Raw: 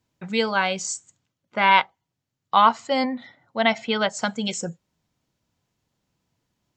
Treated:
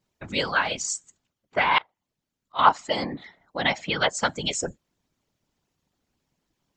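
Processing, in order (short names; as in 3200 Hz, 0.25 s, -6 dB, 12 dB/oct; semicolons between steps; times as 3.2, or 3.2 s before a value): harmonic-percussive split harmonic -9 dB; whisperiser; 1.78–2.59 auto swell 0.314 s; gain +2.5 dB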